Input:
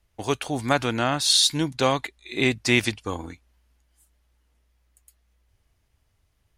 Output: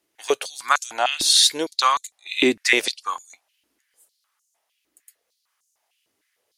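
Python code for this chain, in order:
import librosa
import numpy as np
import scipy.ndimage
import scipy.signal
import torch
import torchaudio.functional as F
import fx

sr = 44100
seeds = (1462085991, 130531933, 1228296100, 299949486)

y = fx.high_shelf(x, sr, hz=4200.0, db=7.0)
y = fx.filter_held_highpass(y, sr, hz=6.6, low_hz=310.0, high_hz=6700.0)
y = F.gain(torch.from_numpy(y), -1.5).numpy()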